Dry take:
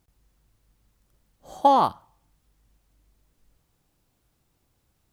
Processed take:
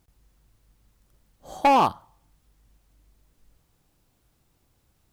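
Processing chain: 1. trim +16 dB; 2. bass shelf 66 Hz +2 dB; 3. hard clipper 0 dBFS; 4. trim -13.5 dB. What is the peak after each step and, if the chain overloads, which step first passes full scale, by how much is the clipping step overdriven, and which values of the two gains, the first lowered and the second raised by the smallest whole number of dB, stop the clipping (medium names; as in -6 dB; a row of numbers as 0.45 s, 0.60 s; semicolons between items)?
+9.0 dBFS, +9.0 dBFS, 0.0 dBFS, -13.5 dBFS; step 1, 9.0 dB; step 1 +7 dB, step 4 -4.5 dB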